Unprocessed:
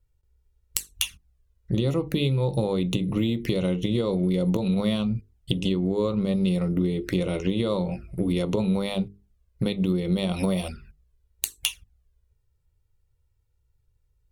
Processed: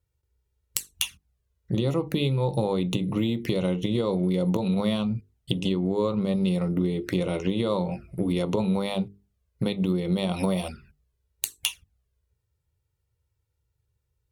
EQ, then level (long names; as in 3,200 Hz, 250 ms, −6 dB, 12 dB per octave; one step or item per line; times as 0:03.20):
high-pass filter 77 Hz
dynamic equaliser 890 Hz, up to +5 dB, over −46 dBFS, Q 1.7
−1.0 dB